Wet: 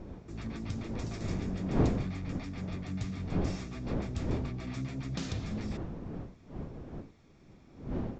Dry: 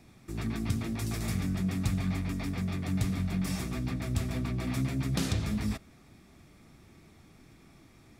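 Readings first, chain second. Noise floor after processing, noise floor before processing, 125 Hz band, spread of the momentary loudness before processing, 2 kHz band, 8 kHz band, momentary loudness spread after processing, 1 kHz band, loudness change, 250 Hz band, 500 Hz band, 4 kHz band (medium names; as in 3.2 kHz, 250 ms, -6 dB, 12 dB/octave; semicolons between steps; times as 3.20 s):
-58 dBFS, -58 dBFS, -3.5 dB, 4 LU, -5.5 dB, -9.5 dB, 13 LU, -1.0 dB, -4.0 dB, -3.0 dB, +3.5 dB, -6.5 dB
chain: wind noise 270 Hz -31 dBFS; resampled via 16 kHz; trim -6.5 dB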